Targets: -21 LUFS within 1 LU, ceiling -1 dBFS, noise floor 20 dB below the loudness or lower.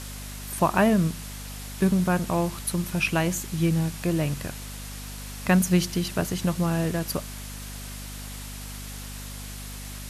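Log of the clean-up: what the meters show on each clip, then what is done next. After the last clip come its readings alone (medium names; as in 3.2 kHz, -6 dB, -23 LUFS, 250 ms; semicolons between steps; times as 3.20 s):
hum 50 Hz; highest harmonic 250 Hz; hum level -37 dBFS; noise floor -38 dBFS; noise floor target -45 dBFS; loudness -25.0 LUFS; peak level -7.5 dBFS; loudness target -21.0 LUFS
-> de-hum 50 Hz, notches 5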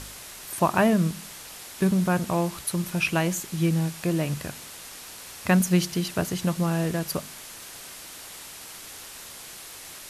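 hum not found; noise floor -42 dBFS; noise floor target -46 dBFS
-> noise reduction 6 dB, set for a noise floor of -42 dBFS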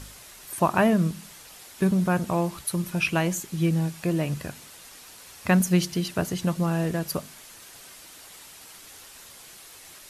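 noise floor -47 dBFS; loudness -25.5 LUFS; peak level -7.5 dBFS; loudness target -21.0 LUFS
-> trim +4.5 dB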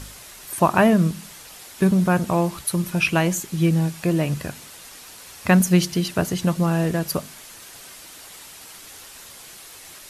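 loudness -21.0 LUFS; peak level -3.0 dBFS; noise floor -43 dBFS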